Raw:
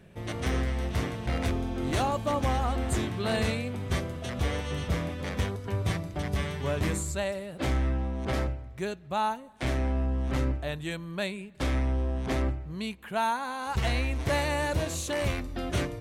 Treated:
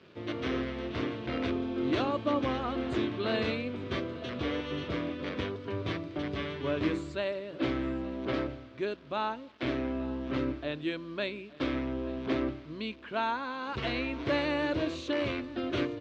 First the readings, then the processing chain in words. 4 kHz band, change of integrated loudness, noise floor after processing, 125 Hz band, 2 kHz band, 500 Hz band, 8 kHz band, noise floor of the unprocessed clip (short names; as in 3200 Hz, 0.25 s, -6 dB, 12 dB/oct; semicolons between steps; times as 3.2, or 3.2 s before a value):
-1.5 dB, -2.5 dB, -49 dBFS, -10.5 dB, -2.0 dB, -0.5 dB, under -15 dB, -45 dBFS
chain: bit-crush 9-bit; speaker cabinet 160–4100 Hz, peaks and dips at 180 Hz -10 dB, 310 Hz +8 dB, 800 Hz -9 dB, 1900 Hz -4 dB; echo 0.868 s -20.5 dB